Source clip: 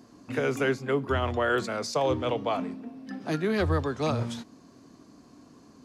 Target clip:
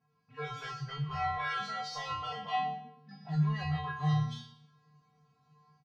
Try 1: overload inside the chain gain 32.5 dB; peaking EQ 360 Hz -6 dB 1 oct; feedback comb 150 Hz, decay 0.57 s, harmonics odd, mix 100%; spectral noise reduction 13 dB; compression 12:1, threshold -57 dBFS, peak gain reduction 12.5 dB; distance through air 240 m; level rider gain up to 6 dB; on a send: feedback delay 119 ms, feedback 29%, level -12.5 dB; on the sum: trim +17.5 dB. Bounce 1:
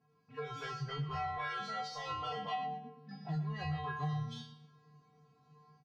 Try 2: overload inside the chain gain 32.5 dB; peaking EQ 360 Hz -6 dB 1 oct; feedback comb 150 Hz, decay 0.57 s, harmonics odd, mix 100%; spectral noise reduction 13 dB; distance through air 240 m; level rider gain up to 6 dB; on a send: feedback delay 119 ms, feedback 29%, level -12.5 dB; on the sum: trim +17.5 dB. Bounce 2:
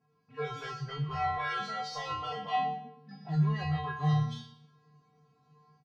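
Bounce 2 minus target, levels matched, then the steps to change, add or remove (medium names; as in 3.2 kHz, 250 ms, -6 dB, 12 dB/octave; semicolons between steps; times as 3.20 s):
500 Hz band +3.5 dB
change: peaking EQ 360 Hz -16 dB 1 oct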